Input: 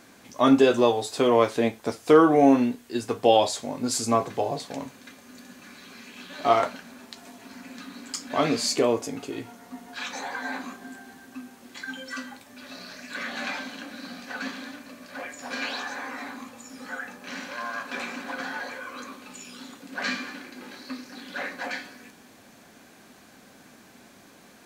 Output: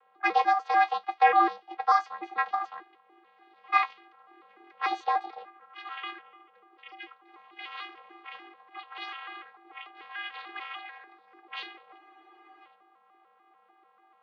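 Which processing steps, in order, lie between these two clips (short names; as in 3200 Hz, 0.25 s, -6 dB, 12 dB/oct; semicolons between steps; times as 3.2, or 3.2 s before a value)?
arpeggiated vocoder bare fifth, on E3, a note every 0.255 s; mistuned SSB -50 Hz 490–2700 Hz; low-pass opened by the level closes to 620 Hz, open at -29 dBFS; speed mistake 45 rpm record played at 78 rpm; spectral freeze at 12, 0.61 s; gain +4 dB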